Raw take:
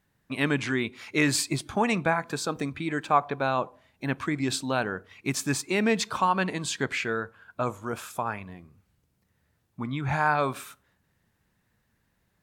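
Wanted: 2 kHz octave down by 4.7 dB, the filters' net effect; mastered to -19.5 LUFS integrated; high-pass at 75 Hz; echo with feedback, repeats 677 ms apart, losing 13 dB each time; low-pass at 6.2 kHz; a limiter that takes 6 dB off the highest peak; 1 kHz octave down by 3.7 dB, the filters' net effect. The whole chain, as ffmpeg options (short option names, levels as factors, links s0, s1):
-af "highpass=75,lowpass=6200,equalizer=f=1000:t=o:g=-3.5,equalizer=f=2000:t=o:g=-5,alimiter=limit=0.126:level=0:latency=1,aecho=1:1:677|1354|2031:0.224|0.0493|0.0108,volume=3.98"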